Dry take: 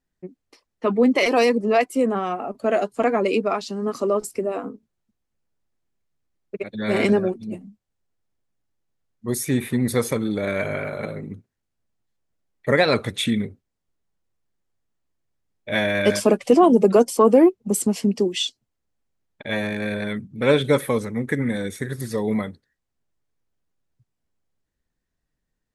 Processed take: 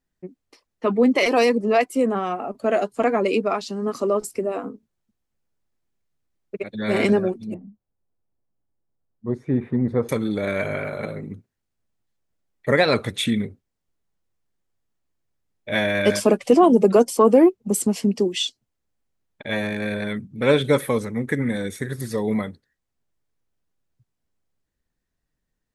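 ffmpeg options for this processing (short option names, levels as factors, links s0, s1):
-filter_complex "[0:a]asettb=1/sr,asplit=3[s0][s1][s2];[s0]atrim=end=7.544[s3];[s1]atrim=start=7.54:end=10.09,asetpts=PTS-STARTPTS,afade=t=in:d=0.004:c=qsin,afade=t=out:st=2.546:d=0.004:c=qsin,lowpass=1000[s4];[s2]atrim=start=10.086[s5];[s3][s4]acrossfade=d=0.004:c1=hsin:c2=qsin[s6];[s6][s5]acrossfade=d=0.004:c1=qsin:c2=hsin"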